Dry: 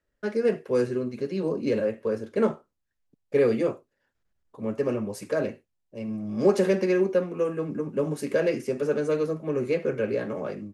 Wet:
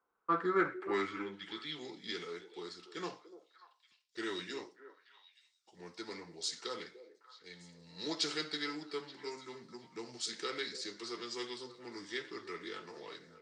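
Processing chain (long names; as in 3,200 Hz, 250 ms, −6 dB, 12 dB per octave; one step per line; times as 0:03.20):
speed change −20%
band-pass filter sweep 880 Hz → 4,500 Hz, 0:00.07–0:01.90
echo through a band-pass that steps 293 ms, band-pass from 450 Hz, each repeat 1.4 octaves, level −11 dB
level +9.5 dB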